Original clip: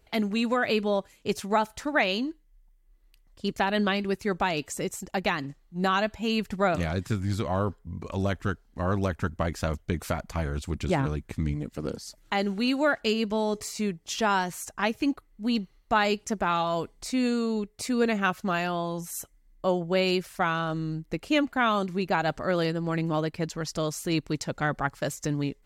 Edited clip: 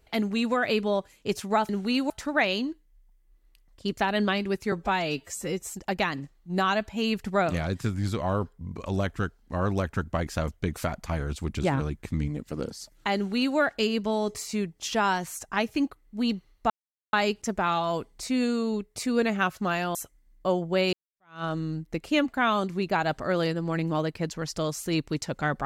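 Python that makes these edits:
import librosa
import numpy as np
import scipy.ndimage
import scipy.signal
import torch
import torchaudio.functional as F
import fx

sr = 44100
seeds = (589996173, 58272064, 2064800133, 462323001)

y = fx.edit(x, sr, fx.stretch_span(start_s=4.31, length_s=0.66, factor=1.5),
    fx.duplicate(start_s=12.42, length_s=0.41, to_s=1.69),
    fx.insert_silence(at_s=15.96, length_s=0.43),
    fx.cut(start_s=18.78, length_s=0.36),
    fx.fade_in_span(start_s=20.12, length_s=0.51, curve='exp'), tone=tone)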